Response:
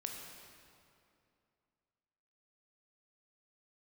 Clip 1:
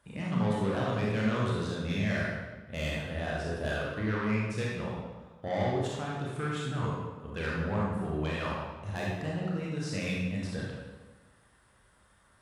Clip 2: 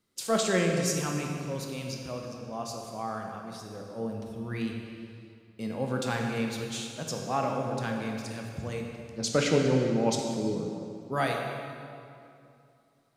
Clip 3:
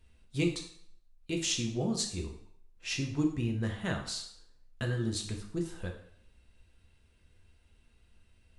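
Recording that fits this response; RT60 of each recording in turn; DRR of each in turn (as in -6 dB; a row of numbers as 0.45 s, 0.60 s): 2; 1.3 s, 2.6 s, 0.65 s; -5.0 dB, 1.0 dB, 1.0 dB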